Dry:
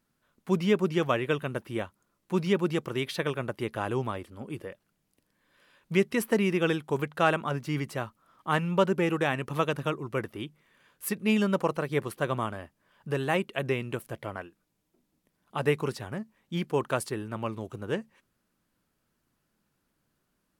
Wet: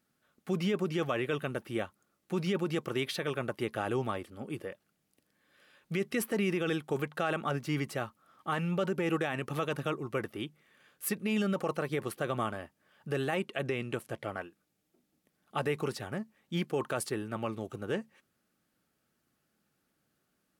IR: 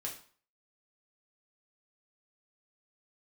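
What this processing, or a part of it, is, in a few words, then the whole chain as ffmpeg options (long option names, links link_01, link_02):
PA system with an anti-feedback notch: -filter_complex "[0:a]highpass=frequency=130:poles=1,asuperstop=centerf=990:order=12:qfactor=8,alimiter=limit=-21.5dB:level=0:latency=1:release=33,asettb=1/sr,asplit=3[link_01][link_02][link_03];[link_01]atrim=end=13.414[link_04];[link_02]atrim=start=13.41:end=14.28,asetpts=PTS-STARTPTS,afade=type=in:duration=0.004:curve=qsin,afade=type=out:start_time=0.866:duration=0.004:curve=qsin,lowpass=11000[link_05];[link_03]atrim=start=14.276[link_06];[link_04][link_05]acrossfade=duration=0.004:curve1=hsin:curve2=qsin[link_07];[link_07][link_06]acrossfade=duration=0.004:curve1=qsin:curve2=hsin"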